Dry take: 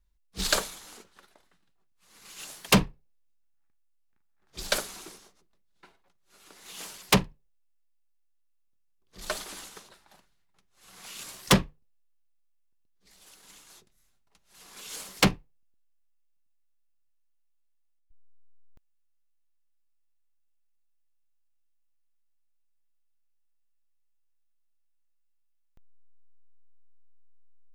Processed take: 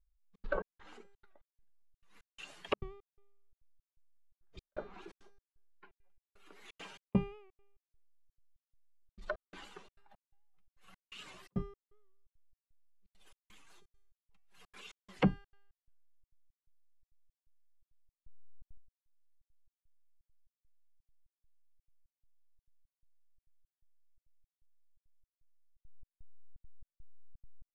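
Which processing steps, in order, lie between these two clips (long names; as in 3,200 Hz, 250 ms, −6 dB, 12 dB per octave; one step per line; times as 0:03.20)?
expanding power law on the bin magnitudes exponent 1.7
treble cut that deepens with the level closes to 950 Hz, closed at −29 dBFS
high shelf with overshoot 3,700 Hz −8 dB, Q 1.5
notch filter 3,400 Hz, Q 29
tuned comb filter 400 Hz, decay 0.77 s, mix 70%
gate pattern "xxxx.xx.." 170 BPM −60 dB
wow of a warped record 78 rpm, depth 100 cents
level +5 dB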